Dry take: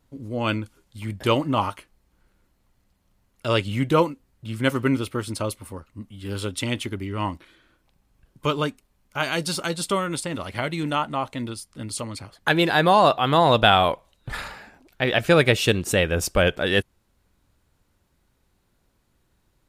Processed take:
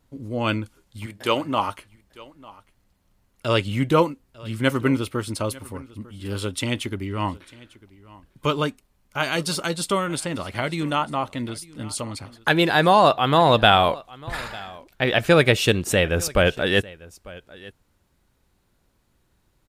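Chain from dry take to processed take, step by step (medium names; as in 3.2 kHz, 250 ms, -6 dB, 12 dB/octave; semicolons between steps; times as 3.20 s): 1.05–1.68 s: high-pass 650 Hz -> 250 Hz 6 dB/octave; delay 898 ms -21.5 dB; trim +1 dB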